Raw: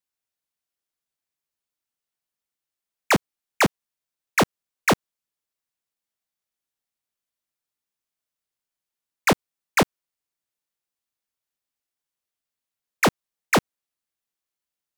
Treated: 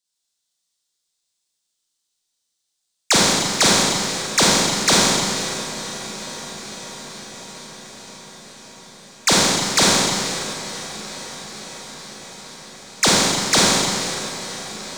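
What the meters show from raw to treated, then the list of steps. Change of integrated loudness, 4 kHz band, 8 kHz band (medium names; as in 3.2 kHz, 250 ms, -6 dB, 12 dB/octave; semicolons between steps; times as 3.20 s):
+6.5 dB, +16.0 dB, +17.5 dB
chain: high-order bell 5.5 kHz +13.5 dB; echo that smears into a reverb 528 ms, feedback 77%, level -15 dB; Schroeder reverb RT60 2.2 s, combs from 33 ms, DRR -5.5 dB; trim -2.5 dB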